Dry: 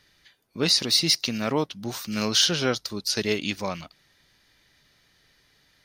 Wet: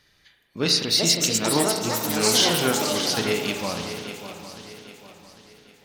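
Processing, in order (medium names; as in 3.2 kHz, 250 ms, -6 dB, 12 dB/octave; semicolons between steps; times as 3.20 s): ever faster or slower copies 570 ms, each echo +6 st, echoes 3; shuffle delay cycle 800 ms, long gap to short 3:1, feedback 36%, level -11 dB; spring tank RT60 1.3 s, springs 35 ms, chirp 35 ms, DRR 4.5 dB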